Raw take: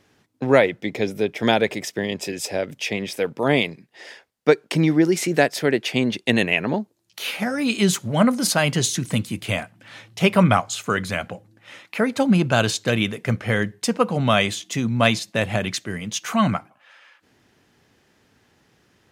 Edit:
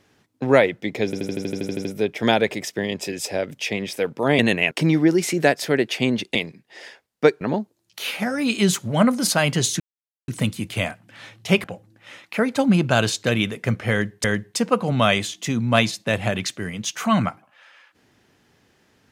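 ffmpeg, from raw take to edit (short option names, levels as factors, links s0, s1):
-filter_complex "[0:a]asplit=18[s0][s1][s2][s3][s4][s5][s6][s7][s8][s9][s10][s11][s12][s13][s14][s15][s16][s17];[s0]atrim=end=1.132[s18];[s1]atrim=start=1.048:end=1.132[s19];[s2]atrim=start=1.048:end=1.132[s20];[s3]atrim=start=1.048:end=1.132[s21];[s4]atrim=start=1.048:end=1.132[s22];[s5]atrim=start=1.048:end=1.132[s23];[s6]atrim=start=1.048:end=1.132[s24];[s7]atrim=start=1.048:end=1.132[s25];[s8]atrim=start=1.048:end=1.132[s26];[s9]atrim=start=1.048:end=1.132[s27];[s10]atrim=start=1.048:end=3.592[s28];[s11]atrim=start=6.288:end=6.612[s29];[s12]atrim=start=4.648:end=6.292[s30];[s13]atrim=start=3.588:end=4.652[s31];[s14]atrim=start=6.608:end=9,asetpts=PTS-STARTPTS,afade=t=out:st=2.388:d=0.004:c=hsin,apad=pad_dur=0.48[s32];[s15]atrim=start=9:end=10.362,asetpts=PTS-STARTPTS,afade=t=in:d=0.004:c=hsin[s33];[s16]atrim=start=11.248:end=13.852[s34];[s17]atrim=start=13.518[s35];[s18][s19]acrossfade=d=0.004:c1=hsin:c2=hsin[s36];[s36][s20]acrossfade=d=0.004:c1=hsin:c2=hsin[s37];[s37][s21]acrossfade=d=0.004:c1=hsin:c2=hsin[s38];[s38][s22]acrossfade=d=0.004:c1=hsin:c2=hsin[s39];[s39][s23]acrossfade=d=0.004:c1=hsin:c2=hsin[s40];[s40][s24]acrossfade=d=0.004:c1=hsin:c2=hsin[s41];[s41][s25]acrossfade=d=0.004:c1=hsin:c2=hsin[s42];[s42][s26]acrossfade=d=0.004:c1=hsin:c2=hsin[s43];[s43][s27]acrossfade=d=0.004:c1=hsin:c2=hsin[s44];[s44][s28]acrossfade=d=0.004:c1=hsin:c2=hsin[s45];[s45][s29]acrossfade=d=0.004:c1=hsin:c2=hsin[s46];[s46][s30]acrossfade=d=0.004:c1=hsin:c2=hsin[s47];[s47][s31]acrossfade=d=0.004:c1=hsin:c2=hsin[s48];[s32][s33]concat=n=2:v=0:a=1[s49];[s48][s49]acrossfade=d=0.004:c1=hsin:c2=hsin[s50];[s50][s34]acrossfade=d=0.004:c1=hsin:c2=hsin[s51];[s51][s35]acrossfade=d=0.004:c1=hsin:c2=hsin"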